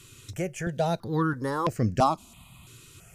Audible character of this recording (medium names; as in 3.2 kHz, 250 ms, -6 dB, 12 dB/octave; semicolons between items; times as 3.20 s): notches that jump at a steady rate 3 Hz 200–3600 Hz